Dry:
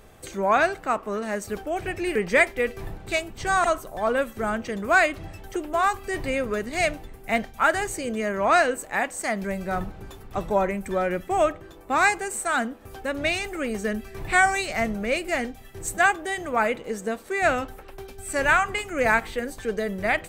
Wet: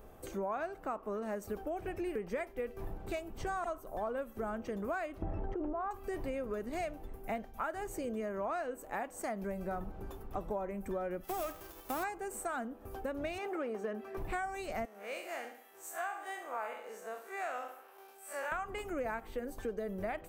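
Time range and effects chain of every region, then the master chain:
5.22–5.91 Bessel low-pass 1100 Hz + fast leveller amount 100%
11.23–12.02 spectral whitening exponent 0.3 + hard clip -21 dBFS
13.38–14.17 overdrive pedal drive 14 dB, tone 1300 Hz, clips at -15 dBFS + HPF 220 Hz
14.85–18.52 time blur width 82 ms + HPF 840 Hz + feedback echo 68 ms, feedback 45%, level -10 dB
whole clip: ten-band EQ 125 Hz -7 dB, 2000 Hz -8 dB, 4000 Hz -9 dB, 8000 Hz -9 dB; compressor 6:1, threshold -33 dBFS; gain -2 dB

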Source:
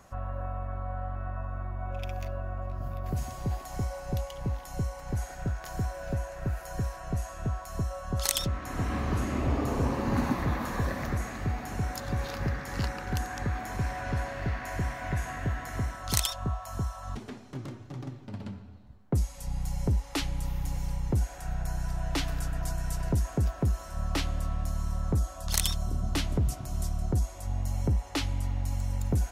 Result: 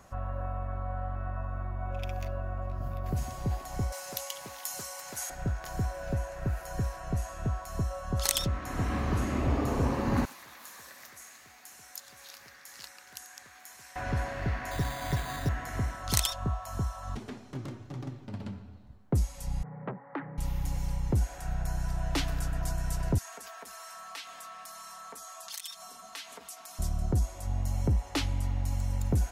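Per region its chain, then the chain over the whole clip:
3.92–5.3 HPF 250 Hz 6 dB/oct + tilt +4.5 dB/oct + Doppler distortion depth 0.24 ms
10.25–13.96 differentiator + Doppler distortion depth 0.31 ms
14.71–15.49 comb 7.1 ms, depth 36% + careless resampling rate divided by 8×, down none, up hold
19.63–20.38 Chebyshev band-pass 130–1900 Hz, order 5 + core saturation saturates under 970 Hz
23.18–26.79 HPF 1100 Hz + comb 4.4 ms, depth 96% + compressor 3:1, threshold -41 dBFS
whole clip: dry

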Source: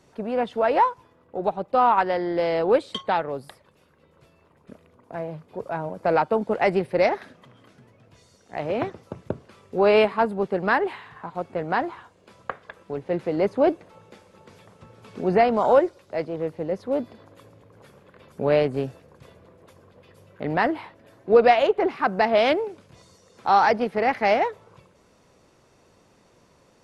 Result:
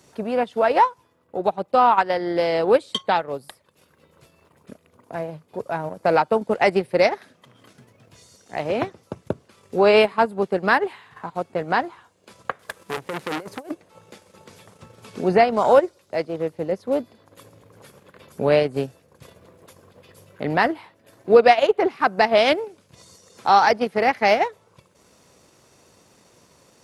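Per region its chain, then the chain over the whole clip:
12.59–13.71 CVSD 64 kbps + negative-ratio compressor -26 dBFS, ratio -0.5 + core saturation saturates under 1900 Hz
whole clip: high shelf 4600 Hz +11.5 dB; transient shaper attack +1 dB, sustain -8 dB; HPF 59 Hz; gain +2 dB

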